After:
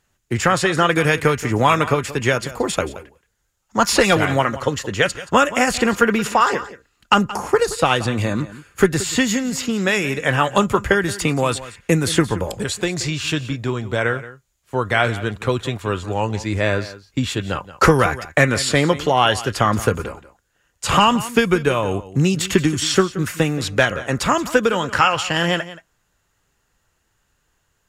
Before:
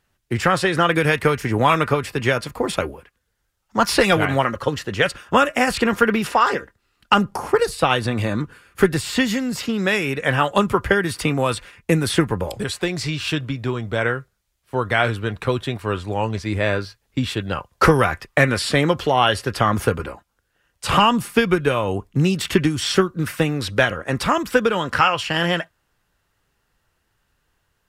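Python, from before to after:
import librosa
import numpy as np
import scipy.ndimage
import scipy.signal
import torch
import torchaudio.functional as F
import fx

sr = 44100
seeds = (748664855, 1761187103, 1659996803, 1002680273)

p1 = fx.peak_eq(x, sr, hz=6900.0, db=10.5, octaves=0.27)
p2 = p1 + fx.echo_single(p1, sr, ms=176, db=-16.0, dry=0)
y = p2 * 10.0 ** (1.0 / 20.0)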